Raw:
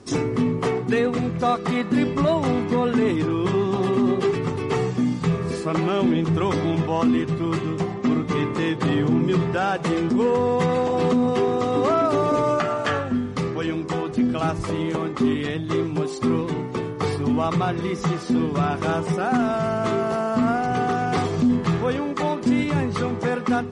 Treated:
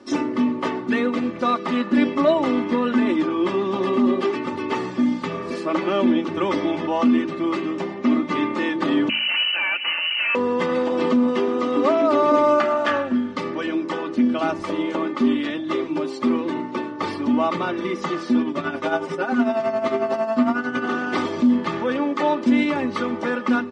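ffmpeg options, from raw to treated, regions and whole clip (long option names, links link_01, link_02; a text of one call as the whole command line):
ffmpeg -i in.wav -filter_complex "[0:a]asettb=1/sr,asplit=3[link_01][link_02][link_03];[link_01]atrim=end=9.094[link_04];[link_02]atrim=start=9.09:end=10.35,asetpts=PTS-STARTPTS,afade=type=in:duration=0.004:curve=qsin,afade=type=out:start_time=1.256:duration=0.004:curve=qsin,bandreject=frequency=50:width_type=h:width=6,bandreject=frequency=100:width_type=h:width=6,bandreject=frequency=150:width_type=h:width=6,bandreject=frequency=200:width_type=h:width=6,bandreject=frequency=250:width_type=h:width=6,bandreject=frequency=300:width_type=h:width=6,bandreject=frequency=350:width_type=h:width=6,bandreject=frequency=400:width_type=h:width=6,bandreject=frequency=450:width_type=h:width=6,aeval=exprs='0.106*(abs(mod(val(0)/0.106+3,4)-2)-1)':channel_layout=same,lowpass=frequency=2600:width_type=q:width=0.5098,lowpass=frequency=2600:width_type=q:width=0.6013,lowpass=frequency=2600:width_type=q:width=0.9,lowpass=frequency=2600:width_type=q:width=2.563,afreqshift=-3100[link_05];[link_03]atrim=start=10.346[link_06];[link_04][link_05]acrossfade=duration=0.004:curve1=hsin:curve2=qsin[link_07];[link_07][link_06]acrossfade=duration=0.004:curve1=qsin:curve2=hsin,asettb=1/sr,asplit=3[link_08][link_09][link_10];[link_08]atrim=end=18.404[link_11];[link_09]atrim=start=18.4:end=20.85,asetpts=PTS-STARTPTS,afade=type=in:duration=0.004:curve=qsin,afade=type=out:start_time=2.446:duration=0.004:curve=qsin,aecho=1:1:7.5:0.59,atrim=end_sample=108045,tremolo=f=11:d=0.64[link_12];[link_10]atrim=start=20.846[link_13];[link_11][link_12]acrossfade=duration=0.004:curve1=hsin:curve2=qsin[link_14];[link_14][link_13]acrossfade=duration=0.004:curve1=qsin:curve2=hsin,acrossover=split=150 5300:gain=0.0631 1 0.178[link_15][link_16][link_17];[link_15][link_16][link_17]amix=inputs=3:normalize=0,aecho=1:1:3.4:0.75,bandreject=frequency=54.29:width_type=h:width=4,bandreject=frequency=108.58:width_type=h:width=4,bandreject=frequency=162.87:width_type=h:width=4,bandreject=frequency=217.16:width_type=h:width=4,bandreject=frequency=271.45:width_type=h:width=4,bandreject=frequency=325.74:width_type=h:width=4" out.wav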